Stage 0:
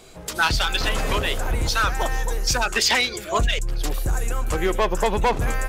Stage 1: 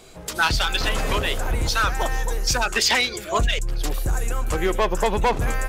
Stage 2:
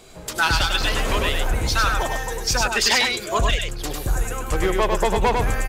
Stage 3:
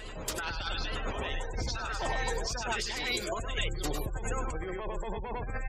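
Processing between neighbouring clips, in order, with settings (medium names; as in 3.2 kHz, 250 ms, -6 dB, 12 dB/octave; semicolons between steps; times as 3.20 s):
no audible change
delay 100 ms -4 dB
compressor with a negative ratio -25 dBFS, ratio -1; spectral gate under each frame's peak -25 dB strong; reverse echo 872 ms -9 dB; trim -8.5 dB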